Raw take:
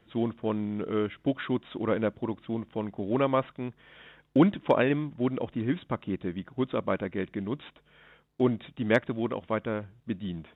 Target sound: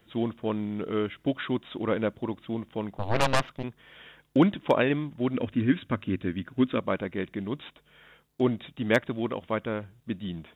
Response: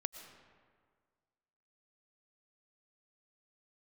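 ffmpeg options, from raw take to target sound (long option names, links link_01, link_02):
-filter_complex "[0:a]crystalizer=i=2:c=0,asplit=3[link_01][link_02][link_03];[link_01]afade=type=out:start_time=2.98:duration=0.02[link_04];[link_02]aeval=exprs='0.237*(cos(1*acos(clip(val(0)/0.237,-1,1)))-cos(1*PI/2))+0.0237*(cos(3*acos(clip(val(0)/0.237,-1,1)))-cos(3*PI/2))+0.0596*(cos(7*acos(clip(val(0)/0.237,-1,1)))-cos(7*PI/2))+0.0531*(cos(8*acos(clip(val(0)/0.237,-1,1)))-cos(8*PI/2))':channel_layout=same,afade=type=in:start_time=2.98:duration=0.02,afade=type=out:start_time=3.62:duration=0.02[link_05];[link_03]afade=type=in:start_time=3.62:duration=0.02[link_06];[link_04][link_05][link_06]amix=inputs=3:normalize=0,asettb=1/sr,asplit=3[link_07][link_08][link_09];[link_07]atrim=end=5.344[link_10];[link_08]atrim=start=5.34:end=6.79,asetpts=PTS-STARTPTS,afade=type=in:duration=0.004:curve=qsin,afade=type=out:start_time=1.446:duration=0.004:curve=qsin,equalizer=frequency=100:width_type=o:width=0.33:gain=9,equalizer=frequency=250:width_type=o:width=0.33:gain=8,equalizer=frequency=800:width_type=o:width=0.33:gain=-7,equalizer=frequency=1600:width_type=o:width=0.33:gain=7,equalizer=frequency=2500:width_type=o:width=0.33:gain=5[link_11];[link_09]atrim=start=6.786[link_12];[link_10][link_11]acrossfade=duration=0.004:curve1=hsin:curve2=qsin[link_13];[link_13][link_12]acrossfade=duration=0.004:curve1=qsin:curve2=hsin"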